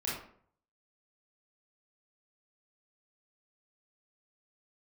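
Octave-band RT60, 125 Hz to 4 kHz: 0.70, 0.60, 0.60, 0.55, 0.45, 0.35 s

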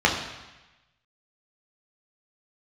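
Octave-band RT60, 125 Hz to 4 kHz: 1.2, 1.0, 1.0, 1.1, 1.2, 1.1 s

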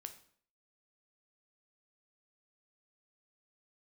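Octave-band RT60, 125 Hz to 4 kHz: 0.55, 0.60, 0.55, 0.55, 0.50, 0.45 s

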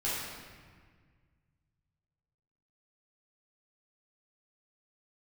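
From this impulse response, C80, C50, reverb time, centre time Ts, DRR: 1.0 dB, -2.0 dB, 1.7 s, 0.107 s, -9.5 dB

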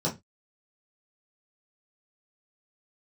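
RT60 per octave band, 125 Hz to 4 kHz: 0.30, 0.25, 0.20, 0.20, 0.20, 0.20 s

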